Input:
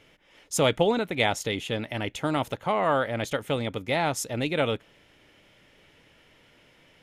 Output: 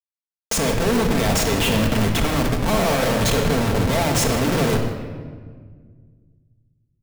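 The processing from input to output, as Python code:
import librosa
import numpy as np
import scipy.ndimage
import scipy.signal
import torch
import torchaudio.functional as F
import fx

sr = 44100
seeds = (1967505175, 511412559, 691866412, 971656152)

p1 = fx.block_float(x, sr, bits=3)
p2 = fx.low_shelf(p1, sr, hz=310.0, db=8.0)
p3 = fx.over_compress(p2, sr, threshold_db=-29.0, ratio=-1.0)
p4 = p2 + F.gain(torch.from_numpy(p3), 2.5).numpy()
p5 = fx.schmitt(p4, sr, flips_db=-28.0)
p6 = p5 + fx.echo_single(p5, sr, ms=153, db=-17.0, dry=0)
y = fx.room_shoebox(p6, sr, seeds[0], volume_m3=2100.0, walls='mixed', distance_m=1.6)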